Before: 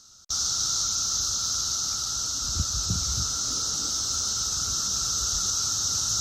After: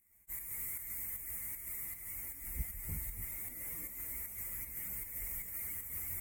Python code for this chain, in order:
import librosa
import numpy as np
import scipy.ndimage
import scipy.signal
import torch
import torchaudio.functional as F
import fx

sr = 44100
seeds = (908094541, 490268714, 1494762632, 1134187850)

y = fx.partial_stretch(x, sr, pct=127)
y = fx.volume_shaper(y, sr, bpm=155, per_beat=1, depth_db=-6, release_ms=121.0, shape='slow start')
y = y * 10.0 ** (-8.5 / 20.0)